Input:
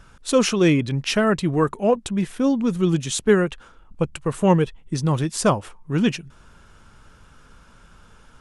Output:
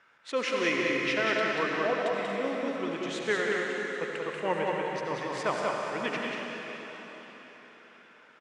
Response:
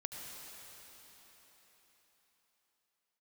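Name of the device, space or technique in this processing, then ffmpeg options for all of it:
station announcement: -filter_complex "[0:a]highpass=420,lowpass=4.1k,equalizer=f=2k:t=o:w=0.52:g=11.5,aecho=1:1:186.6|233.2:0.631|0.316[a];[1:a]atrim=start_sample=2205[b];[a][b]afir=irnorm=-1:irlink=0,volume=-6.5dB"

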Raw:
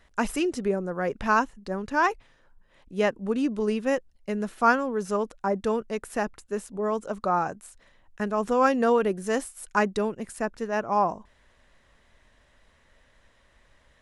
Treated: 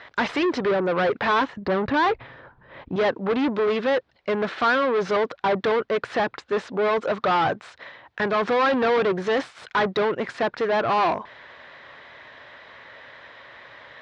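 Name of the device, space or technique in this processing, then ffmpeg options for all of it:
overdrive pedal into a guitar cabinet: -filter_complex "[0:a]asettb=1/sr,asplit=3[a][b][c];[a]atrim=end=1.574[d];[b]atrim=start=1.57:end=2.96,asetpts=PTS-STARTPTS,afade=t=in:d=0.004:c=qsin,afade=t=out:st=1.386:d=0.004:c=qsin,aemphasis=mode=reproduction:type=riaa[e];[c]atrim=start=2.956[f];[d][e]acrossfade=d=0.004:c1=hsin:c2=qsin[g];[g][f]acrossfade=d=0.004:c1=qsin:c2=hsin,asplit=2[h][i];[i]highpass=f=720:p=1,volume=33dB,asoftclip=type=tanh:threshold=-8dB[j];[h][j]amix=inputs=2:normalize=0,lowpass=f=6.7k:p=1,volume=-6dB,highpass=78,equalizer=f=120:t=q:w=4:g=6,equalizer=f=210:t=q:w=4:g=-6,equalizer=f=2.8k:t=q:w=4:g=-5,lowpass=f=3.9k:w=0.5412,lowpass=f=3.9k:w=1.3066,volume=-5.5dB"

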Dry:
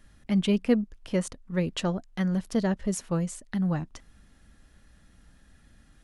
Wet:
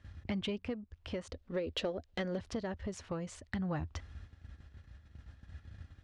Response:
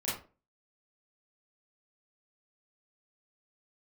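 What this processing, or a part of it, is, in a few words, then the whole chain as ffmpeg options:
AM radio: -filter_complex "[0:a]lowpass=9.9k,lowshelf=f=120:t=q:w=3:g=12,agate=range=-8dB:threshold=-41dB:ratio=16:detection=peak,asettb=1/sr,asplit=3[a][b][c];[a]atrim=end=1.294[d];[b]atrim=start=1.29:end=2.39,asetpts=PTS-STARTPTS,afade=t=in:d=0.004:c=qsin,afade=t=out:st=1.096:d=0.004:c=qsin,equalizer=f=125:t=o:w=1:g=-12,equalizer=f=250:t=o:w=1:g=4,equalizer=f=500:t=o:w=1:g=9,equalizer=f=1k:t=o:w=1:g=-5,equalizer=f=4k:t=o:w=1:g=5[e];[c]atrim=start=2.386[f];[d][e]acrossfade=d=0.004:c1=hsin:c2=qsin[g];[g][f]acrossfade=d=0.004:c1=qsin:c2=hsin,highpass=100,lowpass=4.5k,acompressor=threshold=-35dB:ratio=8,asoftclip=type=tanh:threshold=-26.5dB,tremolo=f=0.51:d=0.34,volume=3.5dB"

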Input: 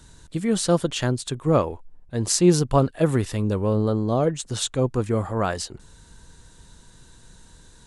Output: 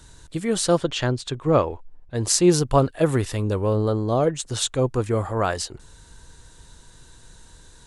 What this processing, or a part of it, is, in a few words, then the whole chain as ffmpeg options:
low shelf boost with a cut just above: -filter_complex "[0:a]lowshelf=f=110:g=4.5,equalizer=f=200:t=o:w=0.68:g=-5.5,asettb=1/sr,asplit=3[a][b][c];[a]atrim=end=0.774[d];[b]atrim=start=0.77:end=2.15,asetpts=PTS-STARTPTS,afade=t=in:d=0.004:c=qsin,afade=t=out:st=1.376:d=0.004:c=qsin,lowpass=5.6k[e];[c]atrim=start=2.146[f];[d][e]acrossfade=d=0.004:c1=hsin:c2=qsin[g];[g][f]acrossfade=d=0.004:c1=qsin:c2=hsin,lowshelf=f=160:g=-4.5,volume=2dB"

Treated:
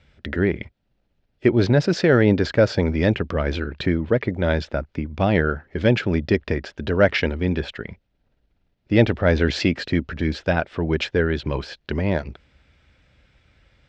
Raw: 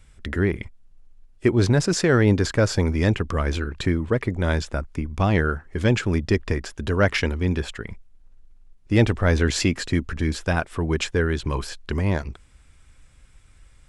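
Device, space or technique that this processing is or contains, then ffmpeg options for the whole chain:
guitar cabinet: -af "highpass=76,equalizer=f=100:t=q:w=4:g=-4,equalizer=f=580:t=q:w=4:g=5,equalizer=f=1.1k:t=q:w=4:g=-7,lowpass=f=4.6k:w=0.5412,lowpass=f=4.6k:w=1.3066,volume=2dB"

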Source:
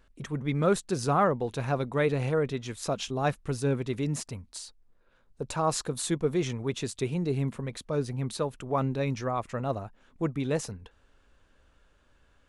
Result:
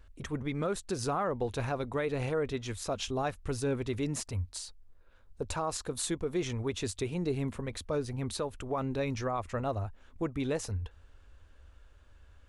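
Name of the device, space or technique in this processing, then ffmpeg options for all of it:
car stereo with a boomy subwoofer: -af "lowshelf=f=110:t=q:w=3:g=7,alimiter=limit=-22.5dB:level=0:latency=1:release=186"

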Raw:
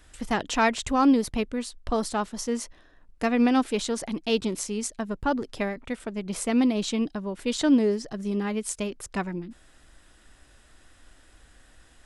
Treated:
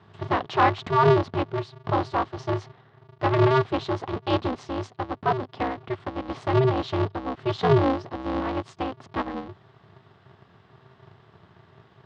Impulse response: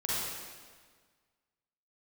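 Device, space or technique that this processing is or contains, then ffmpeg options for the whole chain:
ring modulator pedal into a guitar cabinet: -filter_complex "[0:a]asettb=1/sr,asplit=3[a][b][c];[a]atrim=end=4.824[d];[b]atrim=start=4.82:end=5.62,asetpts=PTS-STARTPTS,afade=t=in:d=0.004:c=qsin,afade=t=out:st=0.796:d=0.004:c=qsin,lowshelf=f=130:g=-7.5[e];[c]atrim=start=5.616[f];[d][e]acrossfade=d=0.004:c1=hsin:c2=qsin[g];[g][f]acrossfade=d=0.004:c1=qsin:c2=hsin,aeval=exprs='val(0)*sgn(sin(2*PI*130*n/s))':c=same,highpass=92,equalizer=f=100:t=q:w=4:g=8,equalizer=f=250:t=q:w=4:g=6,equalizer=f=380:t=q:w=4:g=4,equalizer=f=760:t=q:w=4:g=7,equalizer=f=1.1k:t=q:w=4:g=8,equalizer=f=2.4k:t=q:w=4:g=-4,lowpass=f=4k:w=0.5412,lowpass=f=4k:w=1.3066,volume=-2dB"

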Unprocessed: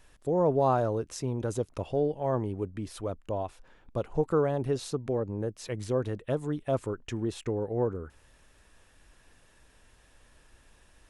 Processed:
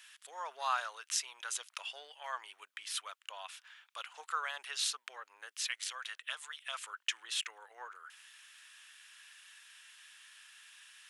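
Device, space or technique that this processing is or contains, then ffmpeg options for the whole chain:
headphones lying on a table: -filter_complex "[0:a]asettb=1/sr,asplit=3[a][b][c];[a]atrim=end=5.664[d];[b]atrim=start=5.66:end=6.86,asetpts=PTS-STARTPTS,afade=t=in:d=0.004:c=qsin,afade=t=out:st=1.196:d=0.004:c=qsin,highpass=f=880:p=1[e];[c]atrim=start=6.856[f];[d][e]acrossfade=d=0.004:c1=hsin:c2=qsin[g];[g][f]acrossfade=d=0.004:c1=qsin:c2=hsin,highpass=f=1.4k:w=0.5412,highpass=f=1.4k:w=1.3066,equalizer=f=3.1k:t=o:w=0.54:g=6,volume=7dB"

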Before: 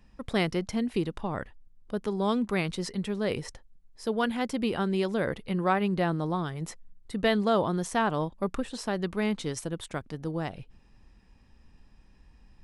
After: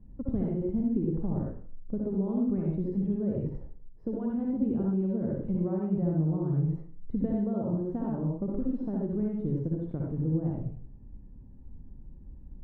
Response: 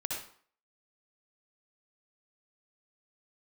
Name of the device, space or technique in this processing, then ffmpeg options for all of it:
television next door: -filter_complex "[0:a]acompressor=threshold=-33dB:ratio=4,lowpass=290[a];[1:a]atrim=start_sample=2205[b];[a][b]afir=irnorm=-1:irlink=0,volume=8.5dB"

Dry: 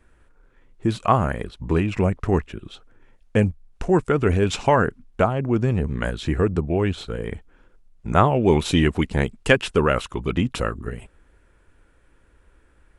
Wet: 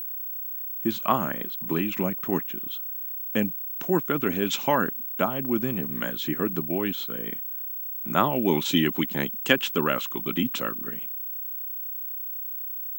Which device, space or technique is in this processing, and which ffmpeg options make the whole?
old television with a line whistle: -af "highpass=f=170:w=0.5412,highpass=f=170:w=1.3066,equalizer=f=270:t=q:w=4:g=3,equalizer=f=450:t=q:w=4:g=-7,equalizer=f=730:t=q:w=4:g=-4,equalizer=f=3.3k:t=q:w=4:g=7,equalizer=f=6.6k:t=q:w=4:g=5,lowpass=f=8.8k:w=0.5412,lowpass=f=8.8k:w=1.3066,aeval=exprs='val(0)+0.0447*sin(2*PI*15734*n/s)':c=same,volume=-3.5dB"

